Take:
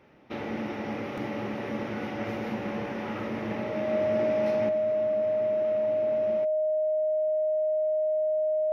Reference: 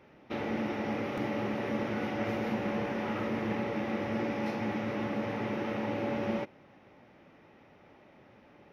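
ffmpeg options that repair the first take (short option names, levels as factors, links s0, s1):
-af "bandreject=f=620:w=30,asetnsamples=n=441:p=0,asendcmd='4.69 volume volume 8.5dB',volume=1"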